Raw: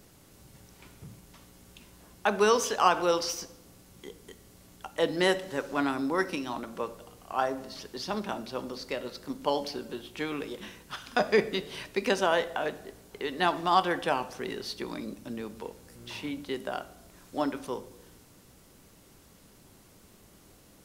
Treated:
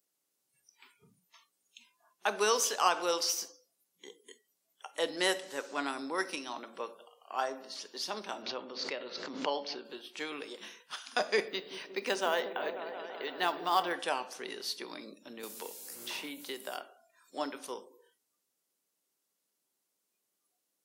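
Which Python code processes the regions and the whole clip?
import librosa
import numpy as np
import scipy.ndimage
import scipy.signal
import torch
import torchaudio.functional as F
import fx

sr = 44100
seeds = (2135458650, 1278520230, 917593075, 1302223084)

y = fx.chain(x, sr, fx.lowpass(hz=3800.0, slope=12),
    fx.pre_swell(db_per_s=48.0), at=(8.42, 9.85))
y = fx.chain(y, sr, fx.high_shelf(hz=5300.0, db=-9.0),
    fx.quant_float(bits=4),
    fx.echo_opening(ms=179, hz=400, octaves=1, feedback_pct=70, wet_db=-6), at=(11.48, 13.94))
y = fx.chain(y, sr, fx.high_shelf(hz=9000.0, db=6.0),
    fx.quant_dither(seeds[0], bits=12, dither='none'),
    fx.band_squash(depth_pct=70), at=(15.43, 16.77))
y = scipy.signal.sosfilt(scipy.signal.butter(2, 340.0, 'highpass', fs=sr, output='sos'), y)
y = fx.noise_reduce_blind(y, sr, reduce_db=24)
y = fx.high_shelf(y, sr, hz=3600.0, db=10.5)
y = F.gain(torch.from_numpy(y), -5.5).numpy()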